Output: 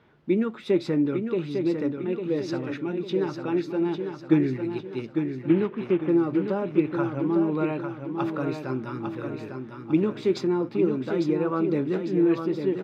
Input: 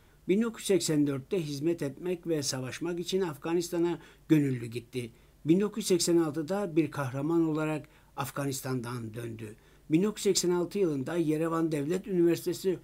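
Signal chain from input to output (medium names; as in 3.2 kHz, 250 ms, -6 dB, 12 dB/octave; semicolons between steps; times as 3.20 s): 5.48–6.09 s: CVSD coder 16 kbps; high-pass 150 Hz 12 dB/octave; distance through air 310 m; feedback delay 851 ms, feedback 44%, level -6.5 dB; trim +4.5 dB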